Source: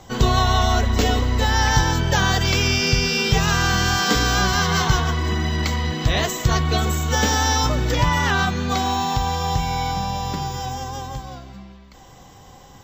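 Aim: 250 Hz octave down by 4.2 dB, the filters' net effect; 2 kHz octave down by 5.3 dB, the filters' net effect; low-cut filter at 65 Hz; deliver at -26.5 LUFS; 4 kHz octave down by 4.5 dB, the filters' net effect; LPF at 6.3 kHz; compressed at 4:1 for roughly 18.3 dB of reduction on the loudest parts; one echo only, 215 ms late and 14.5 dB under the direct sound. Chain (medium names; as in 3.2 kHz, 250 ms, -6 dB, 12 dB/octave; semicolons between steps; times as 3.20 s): high-pass 65 Hz; low-pass 6.3 kHz; peaking EQ 250 Hz -6 dB; peaking EQ 2 kHz -6.5 dB; peaking EQ 4 kHz -3 dB; compression 4:1, threshold -38 dBFS; delay 215 ms -14.5 dB; trim +12 dB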